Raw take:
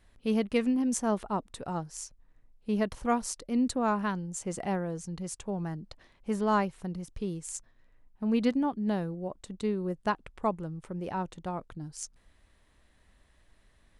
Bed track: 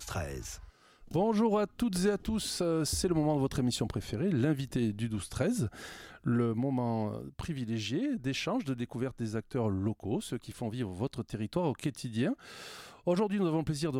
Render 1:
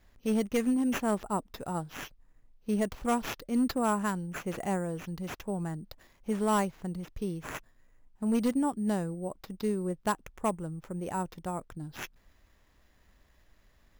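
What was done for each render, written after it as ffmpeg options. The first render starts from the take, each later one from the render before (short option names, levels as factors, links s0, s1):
-af "acrusher=samples=5:mix=1:aa=0.000001,volume=11.9,asoftclip=hard,volume=0.0841"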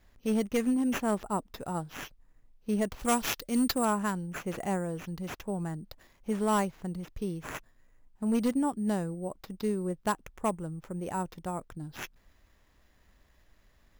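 -filter_complex "[0:a]asettb=1/sr,asplit=3[s0][s1][s2];[s0]atrim=end=2.994[s3];[s1]atrim=start=2.99:end=3.85,asetpts=PTS-STARTPTS,afade=t=in:d=0.004:c=qsin,afade=t=out:st=0.856:d=0.004:c=qsin,highshelf=f=2400:g=10[s4];[s2]atrim=start=3.846[s5];[s3][s4]acrossfade=d=0.004:c1=hsin:c2=qsin[s6];[s6][s5]acrossfade=d=0.004:c1=qsin:c2=hsin"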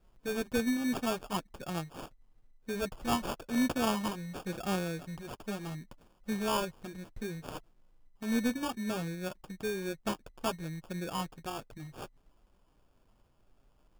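-af "flanger=delay=5.2:depth=4:regen=-20:speed=0.64:shape=triangular,acrusher=samples=22:mix=1:aa=0.000001"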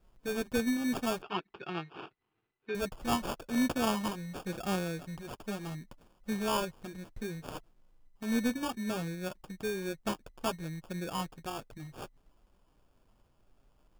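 -filter_complex "[0:a]asettb=1/sr,asplit=3[s0][s1][s2];[s0]atrim=end=1.224[s3];[s1]atrim=start=1.22:end=2.75,asetpts=PTS-STARTPTS,afade=t=in:d=0.004:c=qsin,afade=t=out:st=1.526:d=0.004:c=qsin,highpass=180,equalizer=f=240:t=q:w=4:g=-10,equalizer=f=380:t=q:w=4:g=8,equalizer=f=560:t=q:w=4:g=-10,equalizer=f=1400:t=q:w=4:g=4,equalizer=f=2600:t=q:w=4:g=6,lowpass=f=3800:w=0.5412,lowpass=f=3800:w=1.3066[s4];[s2]atrim=start=2.746[s5];[s3][s4]acrossfade=d=0.004:c1=hsin:c2=qsin[s6];[s6][s5]acrossfade=d=0.004:c1=qsin:c2=hsin"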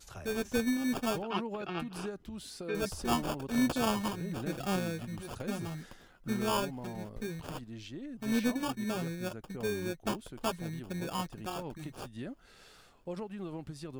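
-filter_complex "[1:a]volume=0.282[s0];[0:a][s0]amix=inputs=2:normalize=0"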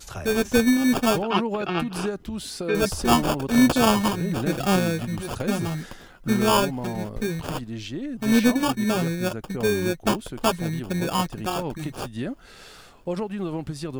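-af "volume=3.76"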